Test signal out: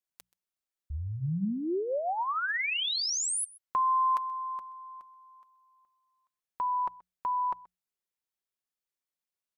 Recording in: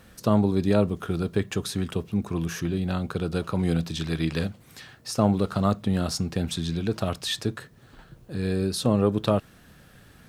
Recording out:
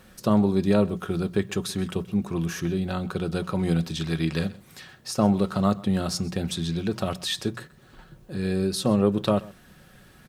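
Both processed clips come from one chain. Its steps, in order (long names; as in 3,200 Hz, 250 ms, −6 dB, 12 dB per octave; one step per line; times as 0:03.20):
mains-hum notches 60/120/180 Hz
comb filter 5.4 ms, depth 32%
on a send: single-tap delay 129 ms −21.5 dB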